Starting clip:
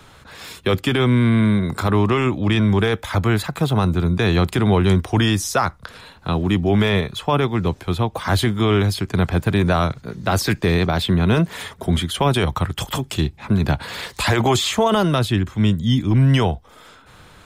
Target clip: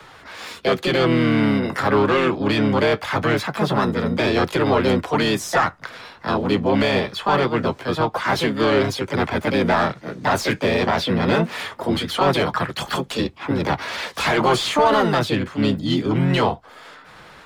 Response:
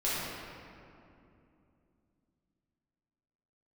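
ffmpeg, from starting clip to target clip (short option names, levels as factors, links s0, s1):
-filter_complex "[0:a]highshelf=f=2400:g=5.5,acrossover=split=100|450|5800[s0][s1][s2][s3];[s0]acompressor=threshold=0.0158:ratio=4[s4];[s4][s1][s2][s3]amix=inputs=4:normalize=0,asplit=2[s5][s6];[s6]asetrate=58866,aresample=44100,atempo=0.749154,volume=0.708[s7];[s5][s7]amix=inputs=2:normalize=0,asplit=2[s8][s9];[s9]highpass=f=720:p=1,volume=6.31,asoftclip=type=tanh:threshold=0.944[s10];[s8][s10]amix=inputs=2:normalize=0,lowpass=f=1100:p=1,volume=0.501,flanger=delay=2:depth=9.1:regen=-57:speed=0.22:shape=triangular"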